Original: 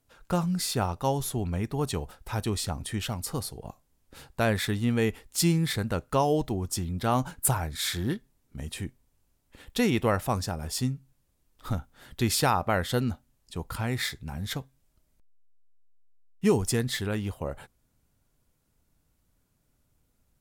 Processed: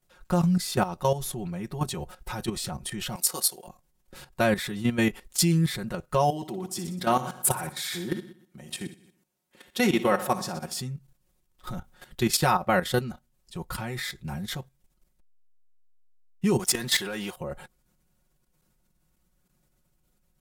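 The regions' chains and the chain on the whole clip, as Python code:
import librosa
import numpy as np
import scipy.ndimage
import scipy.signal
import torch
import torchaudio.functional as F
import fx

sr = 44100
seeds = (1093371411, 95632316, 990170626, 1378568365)

y = fx.chain(x, sr, fx.highpass(hz=380.0, slope=12),
    fx.high_shelf(hz=3500.0, db=12.0), at=(3.15, 3.68))
y = fx.chain(y, sr, fx.highpass(hz=180.0, slope=12),
    fx.echo_feedback(ms=61, feedback_pct=54, wet_db=-11.5), at=(6.3, 10.8))
y = fx.chain(y, sr, fx.highpass(hz=710.0, slope=6),
    fx.leveller(passes=2), at=(16.59, 17.36))
y = y + 0.89 * np.pad(y, (int(5.5 * sr / 1000.0), 0))[:len(y)]
y = fx.level_steps(y, sr, step_db=12)
y = y * 10.0 ** (3.0 / 20.0)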